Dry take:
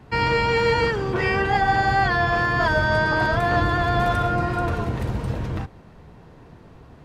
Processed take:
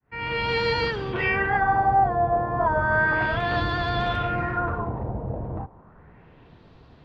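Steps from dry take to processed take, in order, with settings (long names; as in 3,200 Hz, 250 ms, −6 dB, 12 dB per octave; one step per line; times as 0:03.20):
fade in at the beginning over 0.52 s
auto-filter low-pass sine 0.33 Hz 700–4,200 Hz
level −5 dB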